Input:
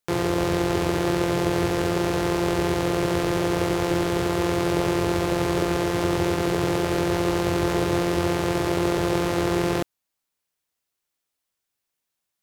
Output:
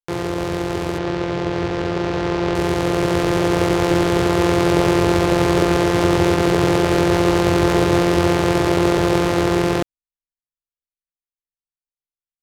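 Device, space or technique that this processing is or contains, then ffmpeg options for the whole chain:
voice memo with heavy noise removal: -filter_complex "[0:a]asettb=1/sr,asplit=3[a][b][c];[a]atrim=end=0.984[d];[b]atrim=start=0.98:end=2.55,asetpts=PTS-STARTPTS,afade=t=in:d=0.004:c=qsin,afade=t=out:st=1.566:d=0.004:c=qsin,acrossover=split=6500[e][f];[f]acompressor=threshold=-56dB:ratio=4:attack=1:release=60[g];[e][g]amix=inputs=2:normalize=0[h];[c]atrim=start=2.546[i];[d][h]acrossfade=d=0.004:c1=hsin:c2=qsin[j];[j][i]acrossfade=d=0.004:c1=qsin:c2=hsin,anlmdn=15.8,dynaudnorm=f=260:g=21:m=11.5dB"

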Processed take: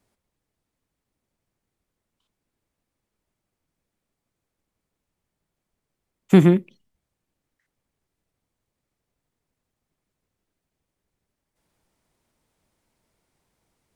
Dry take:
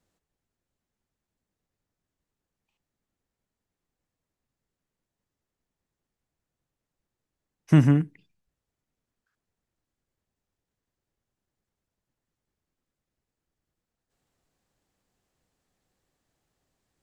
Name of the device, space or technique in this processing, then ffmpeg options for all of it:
nightcore: -af "asetrate=53802,aresample=44100,volume=4.5dB"

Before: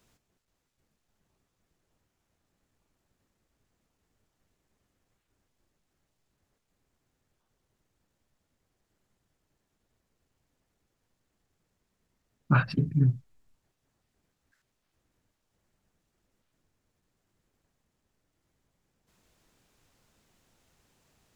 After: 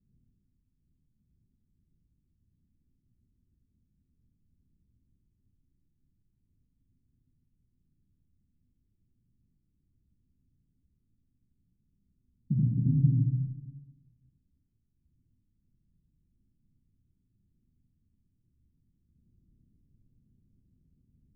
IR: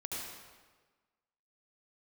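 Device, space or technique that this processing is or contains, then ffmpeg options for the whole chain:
club heard from the street: -filter_complex "[0:a]alimiter=limit=-18.5dB:level=0:latency=1:release=440,lowpass=f=230:w=0.5412,lowpass=f=230:w=1.3066[a];[1:a]atrim=start_sample=2205[b];[a][b]afir=irnorm=-1:irlink=0,volume=5.5dB"

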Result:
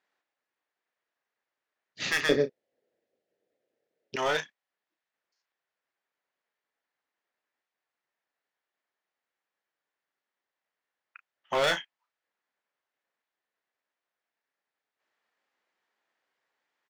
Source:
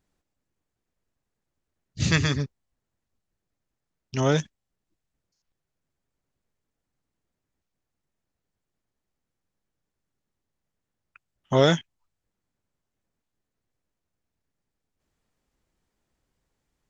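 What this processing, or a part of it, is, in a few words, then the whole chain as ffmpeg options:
megaphone: -filter_complex "[0:a]highpass=660,lowpass=3.8k,equalizer=f=1.8k:t=o:w=0.44:g=4.5,asoftclip=type=hard:threshold=-23.5dB,asplit=2[a][b];[b]adelay=33,volume=-10dB[c];[a][c]amix=inputs=2:normalize=0,asettb=1/sr,asplit=3[d][e][f];[d]atrim=end=2.294[g];[e]atrim=start=2.29:end=4.16,asetpts=PTS-STARTPTS,afade=t=in:d=0.004:c=qsin,afade=t=out:st=1.866:d=0.004:c=qsin,lowshelf=f=720:t=q:w=3:g=12.5[h];[f]atrim=start=4.156[i];[g][h]acrossfade=d=0.004:c1=hsin:c2=qsin[j];[j][i]acrossfade=d=0.004:c1=qsin:c2=hsin,volume=2dB"

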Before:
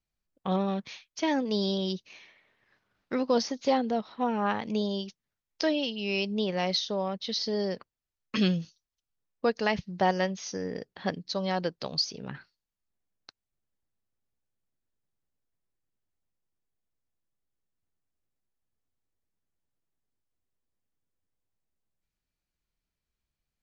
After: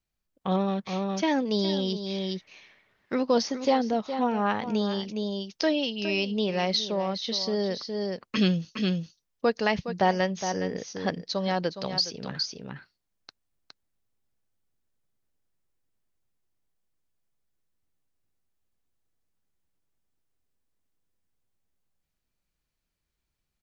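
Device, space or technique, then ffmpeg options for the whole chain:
ducked delay: -filter_complex "[0:a]asplit=3[a][b][c];[b]adelay=414,volume=-2.5dB[d];[c]apad=whole_len=1060215[e];[d][e]sidechaincompress=threshold=-37dB:ratio=8:attack=21:release=338[f];[a][f]amix=inputs=2:normalize=0,volume=2dB"

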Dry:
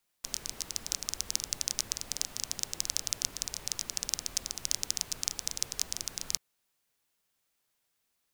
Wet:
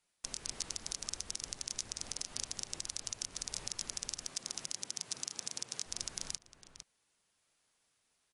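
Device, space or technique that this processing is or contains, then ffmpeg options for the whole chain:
low-bitrate web radio: -filter_complex "[0:a]asettb=1/sr,asplit=3[a][b][c];[a]atrim=end=4.274[d];[b]atrim=start=4.27:end=5.86,asetpts=PTS-STARTPTS,afade=t=in:d=0.004:c=qsin,afade=t=out:st=1.586:d=0.004:c=qsin,highpass=f=120:w=0.5412,highpass=f=120:w=1.3066[e];[c]atrim=start=5.856[f];[d][e]acrossfade=d=0.004:c1=hsin:c2=qsin[g];[g][f]acrossfade=d=0.004:c1=qsin:c2=hsin,asplit=2[h][i];[i]adelay=454.8,volume=-15dB,highshelf=f=4k:g=-10.2[j];[h][j]amix=inputs=2:normalize=0,dynaudnorm=f=190:g=7:m=3.5dB,alimiter=limit=-15dB:level=0:latency=1:release=253" -ar 32000 -c:a libmp3lame -b:a 48k

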